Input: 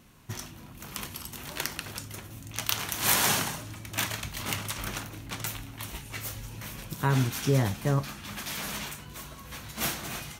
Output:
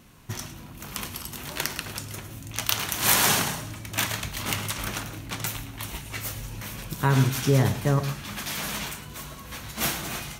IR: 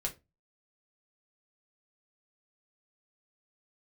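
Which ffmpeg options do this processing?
-filter_complex "[0:a]asplit=2[a][b];[1:a]atrim=start_sample=2205,adelay=105[c];[b][c]afir=irnorm=-1:irlink=0,volume=-14dB[d];[a][d]amix=inputs=2:normalize=0,volume=3.5dB"

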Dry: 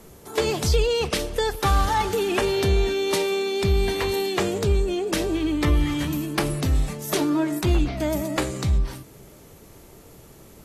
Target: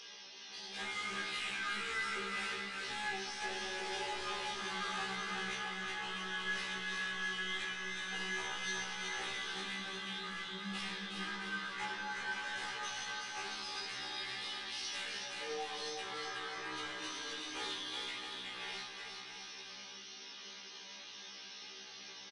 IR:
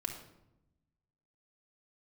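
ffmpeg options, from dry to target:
-filter_complex "[0:a]aderivative,aecho=1:1:5:0.96,asplit=2[a][b];[b]acompressor=mode=upward:threshold=-36dB:ratio=2.5,volume=2dB[c];[a][c]amix=inputs=2:normalize=0,alimiter=limit=-16.5dB:level=0:latency=1:release=199,highpass=490,lowpass=7.7k,flanger=delay=8.1:depth=3.3:regen=44:speed=0.72:shape=triangular,asoftclip=type=tanh:threshold=-36.5dB,asetrate=21036,aresample=44100,aecho=1:1:370|666|902.8|1092|1244:0.631|0.398|0.251|0.158|0.1[d];[1:a]atrim=start_sample=2205,asetrate=52920,aresample=44100[e];[d][e]afir=irnorm=-1:irlink=0,afftfilt=real='re*1.73*eq(mod(b,3),0)':imag='im*1.73*eq(mod(b,3),0)':win_size=2048:overlap=0.75,volume=2dB"

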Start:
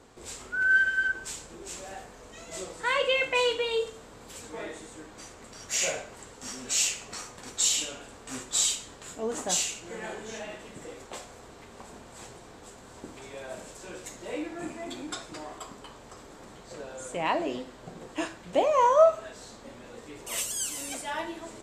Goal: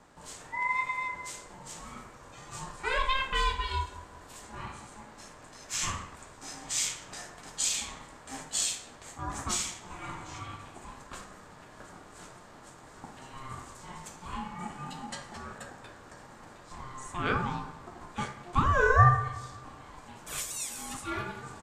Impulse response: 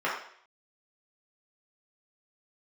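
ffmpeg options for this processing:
-filter_complex "[0:a]asplit=2[a][b];[b]adelay=185,lowpass=f=1.3k:p=1,volume=-15dB,asplit=2[c][d];[d]adelay=185,lowpass=f=1.3k:p=1,volume=0.47,asplit=2[e][f];[f]adelay=185,lowpass=f=1.3k:p=1,volume=0.47,asplit=2[g][h];[h]adelay=185,lowpass=f=1.3k:p=1,volume=0.47[i];[a][c][e][g][i]amix=inputs=5:normalize=0,asplit=2[j][k];[1:a]atrim=start_sample=2205,lowpass=1.6k[l];[k][l]afir=irnorm=-1:irlink=0,volume=-14dB[m];[j][m]amix=inputs=2:normalize=0,aeval=exprs='val(0)*sin(2*PI*530*n/s)':c=same,volume=-1.5dB"

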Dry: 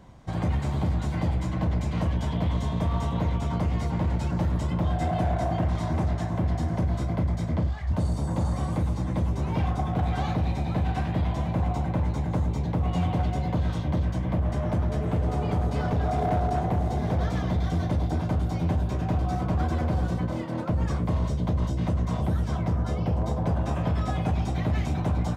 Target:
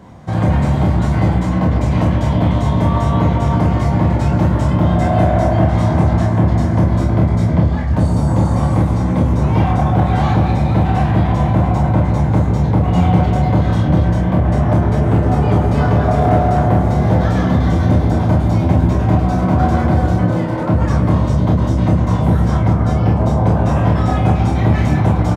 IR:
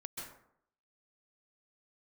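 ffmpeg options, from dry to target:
-filter_complex "[0:a]highpass=80,aecho=1:1:27|47:0.668|0.422,asplit=2[a][b];[1:a]atrim=start_sample=2205,lowpass=2.4k[c];[b][c]afir=irnorm=-1:irlink=0,volume=1dB[d];[a][d]amix=inputs=2:normalize=0,volume=7dB"

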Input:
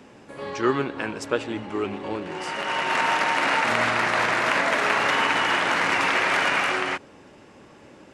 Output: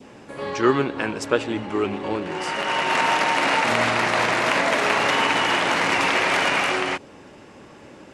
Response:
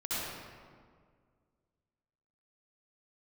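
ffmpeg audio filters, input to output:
-af "adynamicequalizer=threshold=0.0158:dfrequency=1500:dqfactor=1.3:tfrequency=1500:tqfactor=1.3:attack=5:release=100:ratio=0.375:range=2.5:mode=cutabove:tftype=bell,volume=4dB"

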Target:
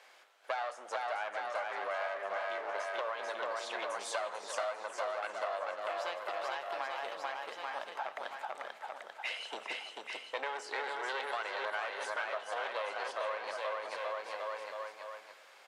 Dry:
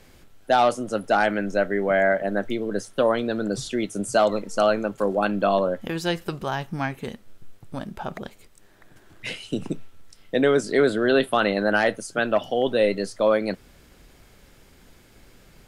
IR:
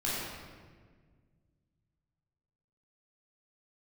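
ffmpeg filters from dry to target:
-filter_complex "[0:a]aeval=exprs='clip(val(0),-1,0.0398)':c=same,highpass=f=680:w=0.5412,highpass=f=680:w=1.3066,aemphasis=mode=reproduction:type=bsi,aecho=1:1:440|836|1192|1513|1802:0.631|0.398|0.251|0.158|0.1,acompressor=threshold=-35dB:ratio=6,asplit=2[a][b];[1:a]atrim=start_sample=2205,asetrate=31311,aresample=44100[c];[b][c]afir=irnorm=-1:irlink=0,volume=-23dB[d];[a][d]amix=inputs=2:normalize=0"

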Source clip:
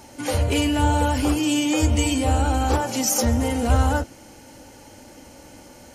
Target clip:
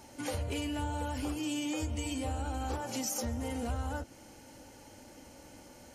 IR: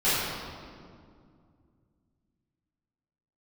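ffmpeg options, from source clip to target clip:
-af "acompressor=threshold=-25dB:ratio=4,volume=-8dB"

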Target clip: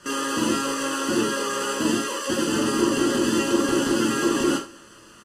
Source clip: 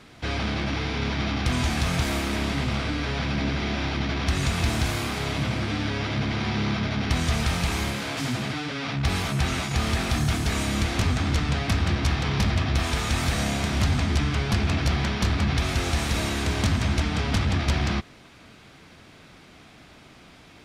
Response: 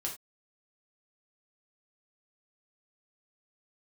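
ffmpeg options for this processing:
-filter_complex "[0:a]lowpass=f=2.2k:w=0.5412,lowpass=f=2.2k:w=1.3066,equalizer=f=1.1k:w=1.9:g=-2.5,aecho=1:1:2.6:0.84,asplit=2[a][b];[b]volume=20.5dB,asoftclip=hard,volume=-20.5dB,volume=-9dB[c];[a][c]amix=inputs=2:normalize=0,asetrate=173754,aresample=44100,aecho=1:1:106|212|318|424:0.075|0.0397|0.0211|0.0112[d];[1:a]atrim=start_sample=2205[e];[d][e]afir=irnorm=-1:irlink=0,volume=-3.5dB" -ar 32000 -c:a aac -b:a 64k

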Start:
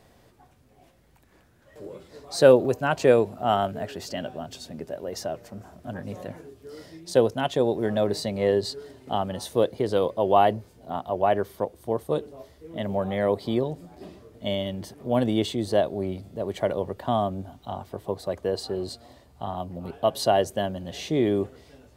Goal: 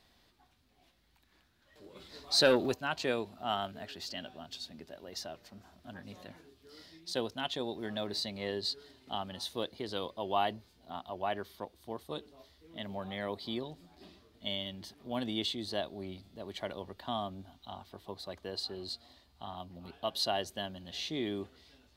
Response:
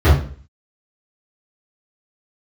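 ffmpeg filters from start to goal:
-filter_complex "[0:a]asplit=3[a][b][c];[a]afade=t=out:st=1.95:d=0.02[d];[b]acontrast=74,afade=t=in:st=1.95:d=0.02,afade=t=out:st=2.73:d=0.02[e];[c]afade=t=in:st=2.73:d=0.02[f];[d][e][f]amix=inputs=3:normalize=0,equalizer=f=125:t=o:w=1:g=-9,equalizer=f=500:t=o:w=1:g=-9,equalizer=f=4k:t=o:w=1:g=10,equalizer=f=8k:t=o:w=1:g=-4,volume=-8dB"

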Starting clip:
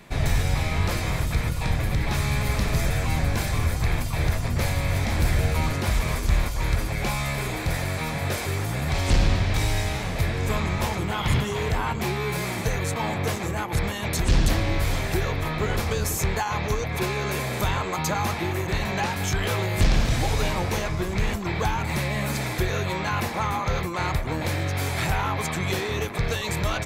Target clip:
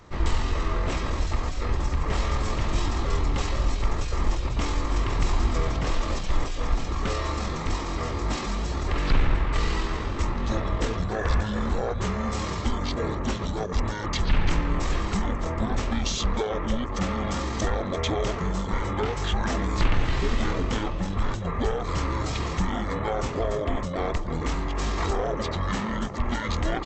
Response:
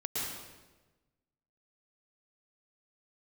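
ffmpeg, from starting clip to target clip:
-filter_complex "[0:a]asplit=2[a][b];[b]adelay=269,lowpass=f=3.8k:p=1,volume=-20dB,asplit=2[c][d];[d]adelay=269,lowpass=f=3.8k:p=1,volume=0.38,asplit=2[e][f];[f]adelay=269,lowpass=f=3.8k:p=1,volume=0.38[g];[a][c][e][g]amix=inputs=4:normalize=0,asetrate=22696,aresample=44100,atempo=1.94306"

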